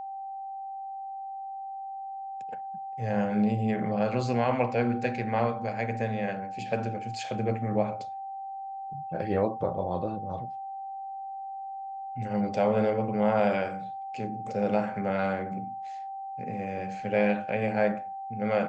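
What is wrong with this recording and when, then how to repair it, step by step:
whistle 780 Hz −35 dBFS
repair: notch filter 780 Hz, Q 30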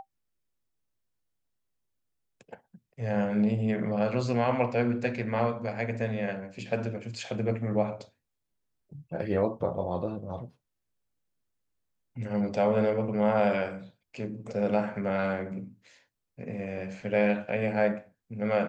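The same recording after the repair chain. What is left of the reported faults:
none of them is left

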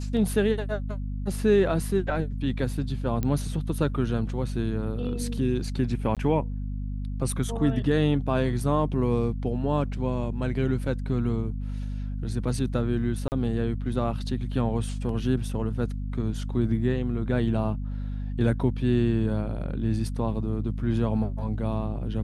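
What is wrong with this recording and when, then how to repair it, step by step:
mains hum 50 Hz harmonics 5 −31 dBFS
0:03.23: click −15 dBFS
0:06.15–0:06.17: drop-out 17 ms
0:13.28–0:13.32: drop-out 39 ms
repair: click removal
hum removal 50 Hz, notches 5
repair the gap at 0:06.15, 17 ms
repair the gap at 0:13.28, 39 ms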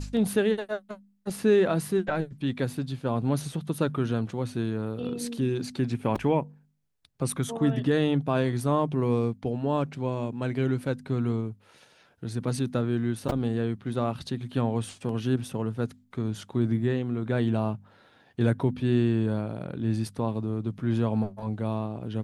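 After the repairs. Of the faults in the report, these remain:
none of them is left

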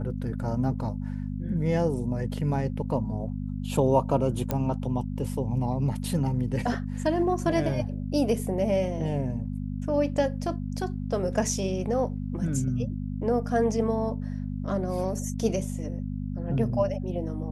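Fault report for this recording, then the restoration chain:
mains hum 50 Hz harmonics 5 −32 dBFS
0:04.51: click −13 dBFS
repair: click removal
hum removal 50 Hz, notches 5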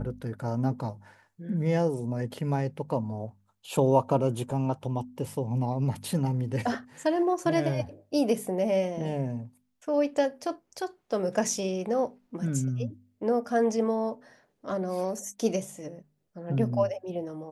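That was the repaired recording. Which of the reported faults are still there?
none of them is left

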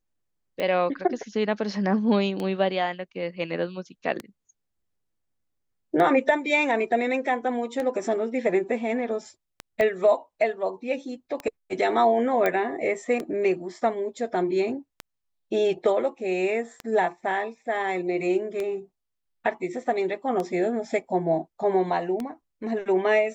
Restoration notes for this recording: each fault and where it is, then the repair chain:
scratch tick 33 1/3 rpm −17 dBFS
0:09.81: click −14 dBFS
0:12.46: click −11 dBFS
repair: click removal

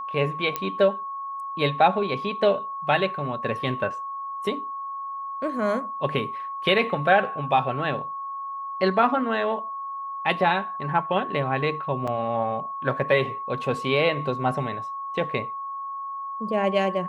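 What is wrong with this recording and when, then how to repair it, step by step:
whistle 1,100 Hz −30 dBFS
0:00.56: click −11 dBFS
0:12.07–0:12.08: drop-out 5.5 ms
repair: click removal
notch filter 1,100 Hz, Q 30
repair the gap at 0:12.07, 5.5 ms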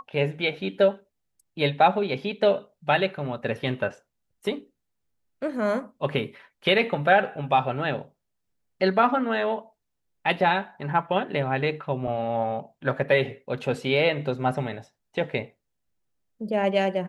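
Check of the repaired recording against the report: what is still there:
none of them is left

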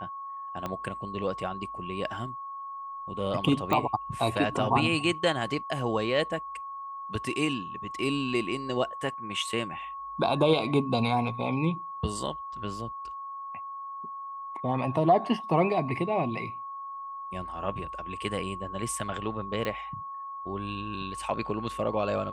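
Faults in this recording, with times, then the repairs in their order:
whistle 1,100 Hz −36 dBFS
0:00.66: click −19 dBFS
0:03.73: click −14 dBFS
0:19.65: click −18 dBFS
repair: click removal
notch filter 1,100 Hz, Q 30

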